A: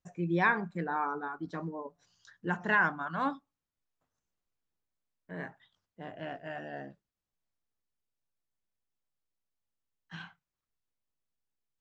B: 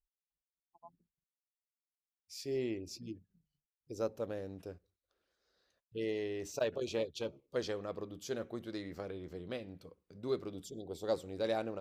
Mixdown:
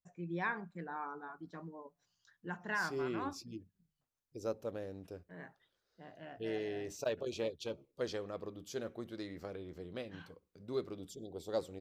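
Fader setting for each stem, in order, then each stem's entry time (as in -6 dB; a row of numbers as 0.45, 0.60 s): -10.0, -2.0 dB; 0.00, 0.45 s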